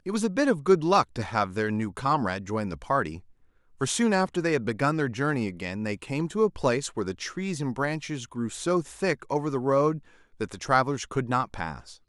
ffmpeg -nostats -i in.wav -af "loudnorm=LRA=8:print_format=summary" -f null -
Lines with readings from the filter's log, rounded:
Input Integrated:    -27.2 LUFS
Input True Peak:      -7.0 dBTP
Input LRA:             2.1 LU
Input Threshold:     -37.4 LUFS